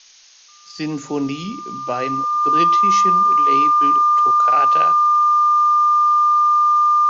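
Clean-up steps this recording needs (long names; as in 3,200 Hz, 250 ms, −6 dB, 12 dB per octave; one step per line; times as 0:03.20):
notch filter 1,200 Hz, Q 30
noise reduction from a noise print 23 dB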